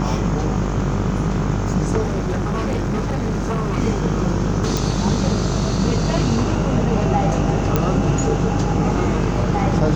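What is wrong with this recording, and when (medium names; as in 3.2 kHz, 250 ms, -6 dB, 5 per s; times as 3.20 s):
buzz 50 Hz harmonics 28 -23 dBFS
2.01–3.78 s: clipped -17.5 dBFS
4.77 s: pop
7.76 s: pop -4 dBFS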